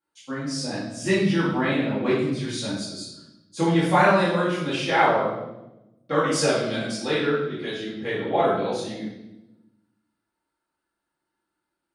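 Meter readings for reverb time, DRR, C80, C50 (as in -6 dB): 0.95 s, -11.5 dB, 4.5 dB, 1.0 dB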